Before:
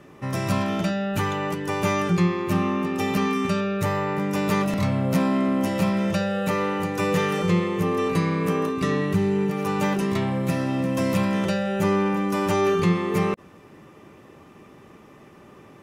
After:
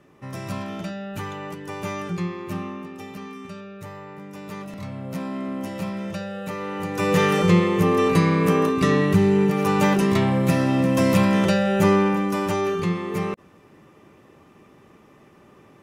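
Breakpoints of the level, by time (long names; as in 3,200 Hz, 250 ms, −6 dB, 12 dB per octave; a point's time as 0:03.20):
0:02.53 −7 dB
0:03.13 −14 dB
0:04.39 −14 dB
0:05.51 −7 dB
0:06.59 −7 dB
0:07.23 +4.5 dB
0:11.88 +4.5 dB
0:12.72 −3.5 dB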